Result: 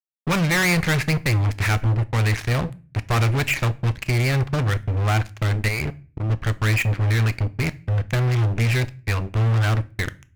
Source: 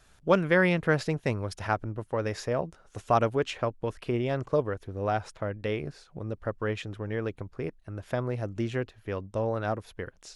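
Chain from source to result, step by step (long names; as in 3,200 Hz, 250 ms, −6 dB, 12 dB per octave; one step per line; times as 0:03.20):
drawn EQ curve 120 Hz 0 dB, 470 Hz −19 dB, 1,600 Hz −4 dB, 2,300 Hz +7 dB, 3,500 Hz −18 dB
0:05.68–0:06.30: output level in coarse steps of 21 dB
fuzz pedal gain 42 dB, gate −46 dBFS
on a send: convolution reverb RT60 0.35 s, pre-delay 3 ms, DRR 13.5 dB
on the sum: level −4.5 dB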